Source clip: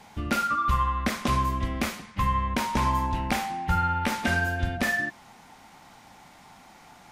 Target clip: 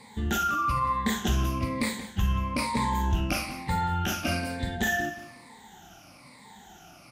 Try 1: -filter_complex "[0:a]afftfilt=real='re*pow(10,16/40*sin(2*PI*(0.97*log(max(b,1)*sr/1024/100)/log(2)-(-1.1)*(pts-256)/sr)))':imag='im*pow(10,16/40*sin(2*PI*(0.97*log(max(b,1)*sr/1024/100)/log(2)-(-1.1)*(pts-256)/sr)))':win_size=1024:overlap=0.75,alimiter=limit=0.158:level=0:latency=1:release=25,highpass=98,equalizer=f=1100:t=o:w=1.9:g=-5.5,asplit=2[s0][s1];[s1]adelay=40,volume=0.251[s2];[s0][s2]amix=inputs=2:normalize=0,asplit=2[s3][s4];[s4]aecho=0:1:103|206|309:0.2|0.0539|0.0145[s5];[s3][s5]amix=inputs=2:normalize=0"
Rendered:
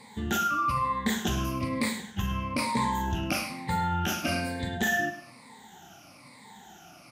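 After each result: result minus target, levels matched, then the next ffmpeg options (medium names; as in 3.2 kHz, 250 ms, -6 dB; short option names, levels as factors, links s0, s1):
echo 76 ms early; 125 Hz band -2.5 dB
-filter_complex "[0:a]afftfilt=real='re*pow(10,16/40*sin(2*PI*(0.97*log(max(b,1)*sr/1024/100)/log(2)-(-1.1)*(pts-256)/sr)))':imag='im*pow(10,16/40*sin(2*PI*(0.97*log(max(b,1)*sr/1024/100)/log(2)-(-1.1)*(pts-256)/sr)))':win_size=1024:overlap=0.75,alimiter=limit=0.158:level=0:latency=1:release=25,highpass=98,equalizer=f=1100:t=o:w=1.9:g=-5.5,asplit=2[s0][s1];[s1]adelay=40,volume=0.251[s2];[s0][s2]amix=inputs=2:normalize=0,asplit=2[s3][s4];[s4]aecho=0:1:179|358|537:0.2|0.0539|0.0145[s5];[s3][s5]amix=inputs=2:normalize=0"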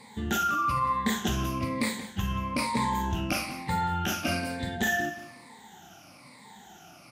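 125 Hz band -3.0 dB
-filter_complex "[0:a]afftfilt=real='re*pow(10,16/40*sin(2*PI*(0.97*log(max(b,1)*sr/1024/100)/log(2)-(-1.1)*(pts-256)/sr)))':imag='im*pow(10,16/40*sin(2*PI*(0.97*log(max(b,1)*sr/1024/100)/log(2)-(-1.1)*(pts-256)/sr)))':win_size=1024:overlap=0.75,alimiter=limit=0.158:level=0:latency=1:release=25,highpass=38,equalizer=f=1100:t=o:w=1.9:g=-5.5,asplit=2[s0][s1];[s1]adelay=40,volume=0.251[s2];[s0][s2]amix=inputs=2:normalize=0,asplit=2[s3][s4];[s4]aecho=0:1:179|358|537:0.2|0.0539|0.0145[s5];[s3][s5]amix=inputs=2:normalize=0"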